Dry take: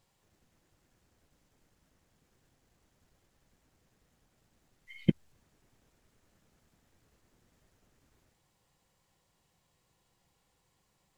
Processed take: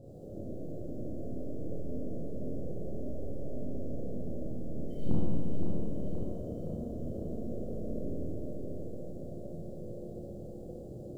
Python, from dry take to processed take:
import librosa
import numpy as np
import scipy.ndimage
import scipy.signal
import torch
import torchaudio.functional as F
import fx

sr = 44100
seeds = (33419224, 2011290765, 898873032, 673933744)

y = scipy.signal.sosfilt(scipy.signal.ellip(4, 1.0, 40, 600.0, 'lowpass', fs=sr, output='sos'), x)
y = fx.tilt_eq(y, sr, slope=2.0)
y = fx.over_compress(y, sr, threshold_db=-44.0, ratio=-1.0)
y = fx.echo_feedback(y, sr, ms=520, feedback_pct=59, wet_db=-6)
y = fx.rev_schroeder(y, sr, rt60_s=2.0, comb_ms=25, drr_db=-8.0)
y = y * librosa.db_to_amplitude(16.5)